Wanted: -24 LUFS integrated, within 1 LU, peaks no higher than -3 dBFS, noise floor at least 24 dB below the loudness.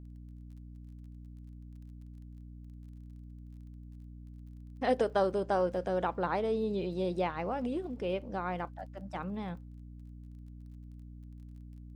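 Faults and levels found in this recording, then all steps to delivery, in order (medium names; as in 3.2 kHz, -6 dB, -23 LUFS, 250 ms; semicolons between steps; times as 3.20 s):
tick rate 23 per s; hum 60 Hz; highest harmonic 300 Hz; hum level -45 dBFS; loudness -33.5 LUFS; peak level -18.0 dBFS; loudness target -24.0 LUFS
-> de-click; hum notches 60/120/180/240/300 Hz; trim +9.5 dB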